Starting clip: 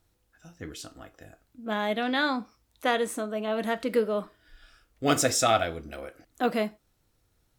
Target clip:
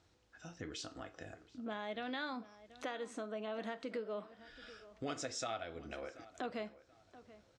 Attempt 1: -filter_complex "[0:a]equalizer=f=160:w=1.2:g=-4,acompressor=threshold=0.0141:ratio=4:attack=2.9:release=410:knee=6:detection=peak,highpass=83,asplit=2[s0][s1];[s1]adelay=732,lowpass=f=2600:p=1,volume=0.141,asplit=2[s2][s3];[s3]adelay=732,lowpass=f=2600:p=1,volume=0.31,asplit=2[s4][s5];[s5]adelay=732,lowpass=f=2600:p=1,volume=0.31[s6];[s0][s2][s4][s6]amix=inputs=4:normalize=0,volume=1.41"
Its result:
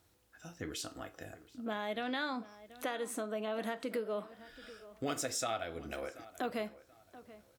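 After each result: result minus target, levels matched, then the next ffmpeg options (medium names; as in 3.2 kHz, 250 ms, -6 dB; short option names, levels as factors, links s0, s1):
compression: peak gain reduction -4.5 dB; 8 kHz band +3.0 dB
-filter_complex "[0:a]equalizer=f=160:w=1.2:g=-4,acompressor=threshold=0.00708:ratio=4:attack=2.9:release=410:knee=6:detection=peak,highpass=83,asplit=2[s0][s1];[s1]adelay=732,lowpass=f=2600:p=1,volume=0.141,asplit=2[s2][s3];[s3]adelay=732,lowpass=f=2600:p=1,volume=0.31,asplit=2[s4][s5];[s5]adelay=732,lowpass=f=2600:p=1,volume=0.31[s6];[s0][s2][s4][s6]amix=inputs=4:normalize=0,volume=1.41"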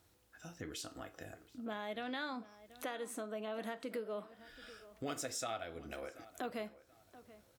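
8 kHz band +3.0 dB
-filter_complex "[0:a]lowpass=f=6700:w=0.5412,lowpass=f=6700:w=1.3066,equalizer=f=160:w=1.2:g=-4,acompressor=threshold=0.00708:ratio=4:attack=2.9:release=410:knee=6:detection=peak,highpass=83,asplit=2[s0][s1];[s1]adelay=732,lowpass=f=2600:p=1,volume=0.141,asplit=2[s2][s3];[s3]adelay=732,lowpass=f=2600:p=1,volume=0.31,asplit=2[s4][s5];[s5]adelay=732,lowpass=f=2600:p=1,volume=0.31[s6];[s0][s2][s4][s6]amix=inputs=4:normalize=0,volume=1.41"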